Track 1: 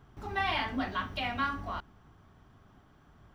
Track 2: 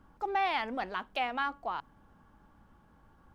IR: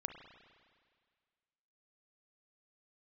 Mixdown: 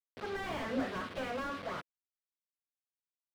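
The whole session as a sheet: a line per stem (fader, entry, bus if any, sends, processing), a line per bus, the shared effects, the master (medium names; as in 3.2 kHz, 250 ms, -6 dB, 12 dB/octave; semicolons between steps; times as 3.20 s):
+0.5 dB, 0.00 s, no send, level rider gain up to 5.5 dB; auto duck -7 dB, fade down 1.35 s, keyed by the second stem
-1.0 dB, 0.5 ms, no send, comb filter that takes the minimum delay 5.8 ms; de-hum 54.17 Hz, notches 9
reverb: none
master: bit crusher 7-bit; cabinet simulation 190–4600 Hz, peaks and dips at 310 Hz -4 dB, 510 Hz +6 dB, 840 Hz -9 dB; slew-rate limiter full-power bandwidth 17 Hz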